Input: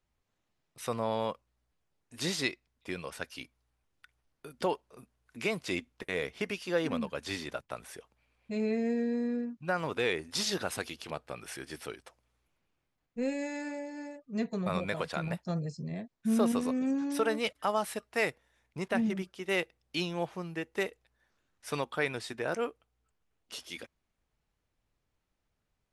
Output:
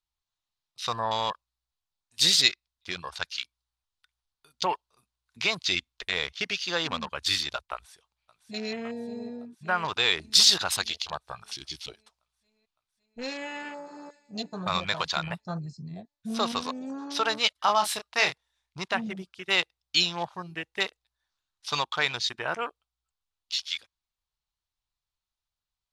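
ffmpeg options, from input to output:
ffmpeg -i in.wav -filter_complex "[0:a]asplit=2[link_01][link_02];[link_02]afade=type=in:start_time=7.72:duration=0.01,afade=type=out:start_time=8.73:duration=0.01,aecho=0:1:560|1120|1680|2240|2800|3360|3920|4480|5040|5600|6160|6720:0.316228|0.237171|0.177878|0.133409|0.100056|0.0750423|0.0562817|0.0422113|0.0316585|0.0237439|0.0178079|0.0133559[link_03];[link_01][link_03]amix=inputs=2:normalize=0,asplit=2[link_04][link_05];[link_05]afade=type=in:start_time=13.35:duration=0.01,afade=type=out:start_time=14.18:duration=0.01,aecho=0:1:510|1020|1530|2040:0.223872|0.0895488|0.0358195|0.0143278[link_06];[link_04][link_06]amix=inputs=2:normalize=0,asettb=1/sr,asplit=3[link_07][link_08][link_09];[link_07]atrim=end=17.634[link_10];[link_08]atrim=start=17.63:end=18.79,asetpts=PTS-STARTPTS,afade=type=in:duration=0.004:curve=qsin,afade=type=out:start_time=1.156:duration=0.004:curve=qsin,asplit=2[link_11][link_12];[link_12]adelay=29,volume=-6.5dB[link_13];[link_11][link_13]amix=inputs=2:normalize=0,atrim=end_sample=51156[link_14];[link_09]atrim=start=18.786[link_15];[link_10][link_14]acrossfade=duration=0.004:curve1=hsin:curve2=qsin[link_16];[link_16][link_15]acrossfade=duration=0.004:curve1=qsin:curve2=hsin,equalizer=frequency=125:width_type=o:width=1:gain=-4,equalizer=frequency=250:width_type=o:width=1:gain=-11,equalizer=frequency=500:width_type=o:width=1:gain=-9,equalizer=frequency=1000:width_type=o:width=1:gain=5,equalizer=frequency=2000:width_type=o:width=1:gain=-4,equalizer=frequency=4000:width_type=o:width=1:gain=11,equalizer=frequency=8000:width_type=o:width=1:gain=4,afwtdn=0.00708,volume=6.5dB" out.wav

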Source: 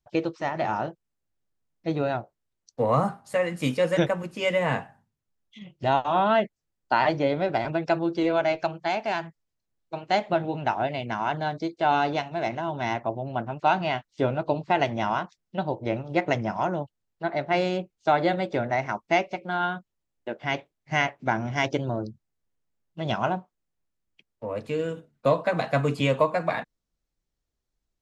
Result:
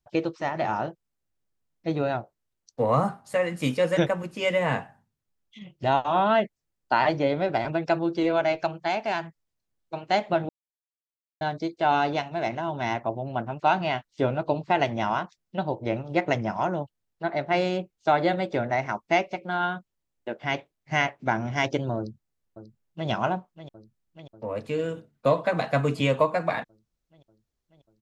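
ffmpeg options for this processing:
ffmpeg -i in.wav -filter_complex "[0:a]asplit=2[link_01][link_02];[link_02]afade=type=in:start_time=21.97:duration=0.01,afade=type=out:start_time=23.09:duration=0.01,aecho=0:1:590|1180|1770|2360|2950|3540|4130|4720|5310|5900|6490|7080:0.237137|0.177853|0.13339|0.100042|0.0750317|0.0562738|0.0422054|0.031654|0.0237405|0.0178054|0.013354|0.0100155[link_03];[link_01][link_03]amix=inputs=2:normalize=0,asplit=3[link_04][link_05][link_06];[link_04]atrim=end=10.49,asetpts=PTS-STARTPTS,afade=type=out:start_time=10.486:duration=0.004:curve=hsin[link_07];[link_05]atrim=start=10.49:end=11.41,asetpts=PTS-STARTPTS,volume=0[link_08];[link_06]atrim=start=11.41,asetpts=PTS-STARTPTS,afade=type=in:duration=0.004:curve=hsin[link_09];[link_07][link_08][link_09]concat=n=3:v=0:a=1" out.wav

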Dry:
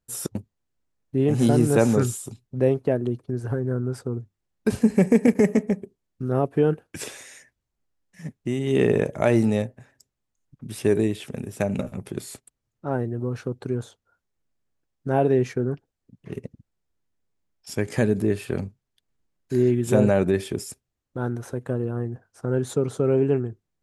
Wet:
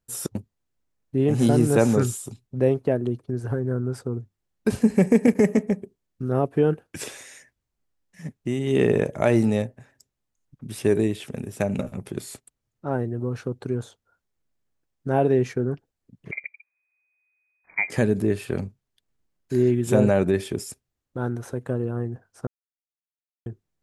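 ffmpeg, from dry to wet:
ffmpeg -i in.wav -filter_complex "[0:a]asettb=1/sr,asplit=3[link_01][link_02][link_03];[link_01]atrim=end=16.314[link_04];[link_02]atrim=start=16.31:end=17.9,asetpts=PTS-STARTPTS,afade=type=in:duration=0.004:curve=qsin,afade=type=out:start_time=1.586:duration=0.004:curve=qsin,lowpass=frequency=2100:width_type=q:width=0.5098,lowpass=frequency=2100:width_type=q:width=0.6013,lowpass=frequency=2100:width_type=q:width=0.9,lowpass=frequency=2100:width_type=q:width=2.563,afreqshift=-2500[link_05];[link_03]atrim=start=17.896[link_06];[link_04][link_05]acrossfade=duration=0.004:curve1=hsin:curve2=qsin[link_07];[link_07][link_06]acrossfade=duration=0.004:curve1=qsin:curve2=hsin,asplit=3[link_08][link_09][link_10];[link_08]atrim=end=22.47,asetpts=PTS-STARTPTS,afade=type=out:start_time=22.466:duration=0.004:curve=hsin[link_11];[link_09]atrim=start=22.47:end=23.46,asetpts=PTS-STARTPTS,volume=0[link_12];[link_10]atrim=start=23.46,asetpts=PTS-STARTPTS,afade=type=in:duration=0.004:curve=hsin[link_13];[link_11][link_12][link_13]concat=n=3:v=0:a=1" out.wav

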